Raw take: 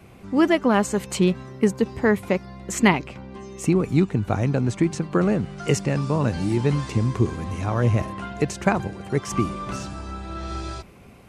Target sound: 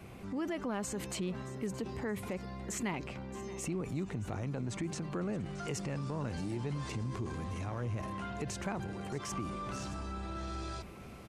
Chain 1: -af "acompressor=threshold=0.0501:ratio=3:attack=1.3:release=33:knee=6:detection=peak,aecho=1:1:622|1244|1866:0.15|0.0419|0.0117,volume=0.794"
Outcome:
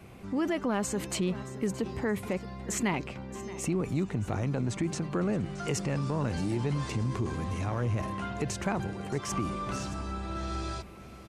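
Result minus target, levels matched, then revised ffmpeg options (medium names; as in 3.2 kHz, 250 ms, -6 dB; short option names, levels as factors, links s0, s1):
compression: peak gain reduction -7 dB
-af "acompressor=threshold=0.015:ratio=3:attack=1.3:release=33:knee=6:detection=peak,aecho=1:1:622|1244|1866:0.15|0.0419|0.0117,volume=0.794"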